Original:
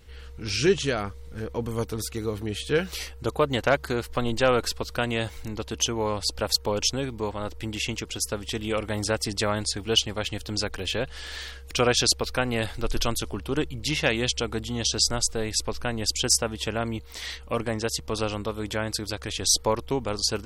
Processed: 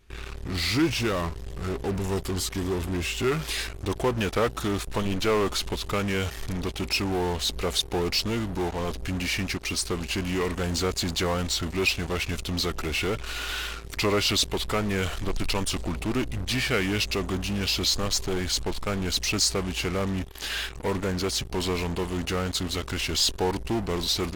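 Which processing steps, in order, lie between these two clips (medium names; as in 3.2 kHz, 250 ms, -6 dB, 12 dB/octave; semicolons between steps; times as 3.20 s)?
in parallel at -10.5 dB: fuzz box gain 42 dB, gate -42 dBFS; on the sum: tape speed -16%; trim -6 dB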